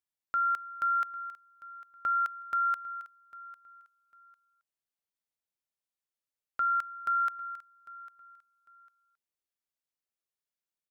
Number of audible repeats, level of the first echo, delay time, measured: 2, -19.0 dB, 0.8 s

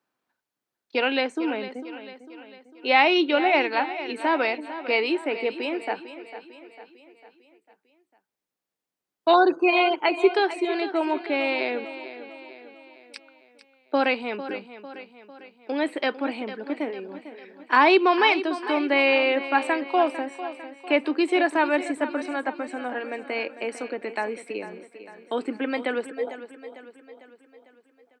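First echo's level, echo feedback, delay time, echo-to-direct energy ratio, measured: -13.0 dB, 51%, 0.45 s, -11.5 dB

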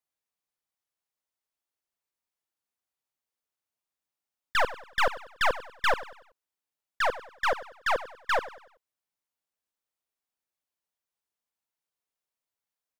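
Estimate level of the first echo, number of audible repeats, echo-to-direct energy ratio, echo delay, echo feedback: -15.5 dB, 3, -14.5 dB, 95 ms, 40%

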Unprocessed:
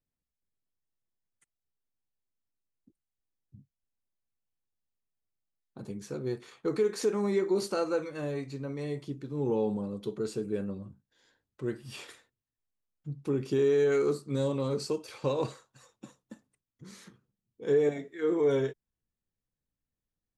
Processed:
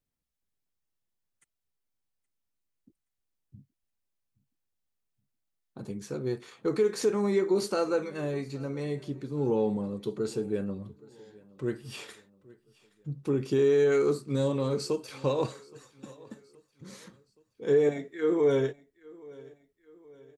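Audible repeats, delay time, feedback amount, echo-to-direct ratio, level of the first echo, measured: 2, 0.822 s, 48%, -22.0 dB, -23.0 dB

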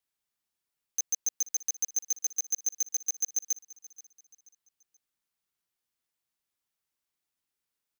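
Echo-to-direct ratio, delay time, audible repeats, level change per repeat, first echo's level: -18.5 dB, 0.48 s, 2, -9.0 dB, -19.0 dB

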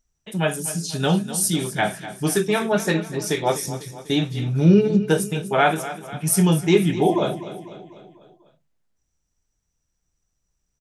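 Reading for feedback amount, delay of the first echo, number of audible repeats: 54%, 0.248 s, 4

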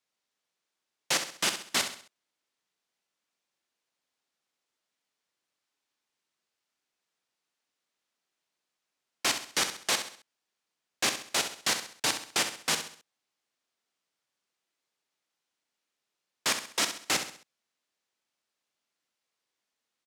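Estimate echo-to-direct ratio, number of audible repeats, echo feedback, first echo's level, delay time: -8.0 dB, 4, 40%, -9.0 dB, 66 ms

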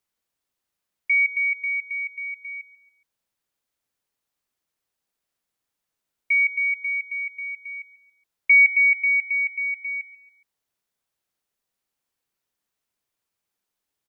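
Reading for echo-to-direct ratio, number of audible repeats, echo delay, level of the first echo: -16.0 dB, 3, 0.139 s, -16.5 dB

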